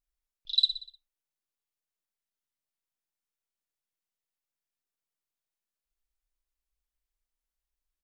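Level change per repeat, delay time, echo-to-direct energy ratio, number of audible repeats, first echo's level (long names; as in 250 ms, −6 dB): −6.0 dB, 61 ms, −10.5 dB, 4, −11.5 dB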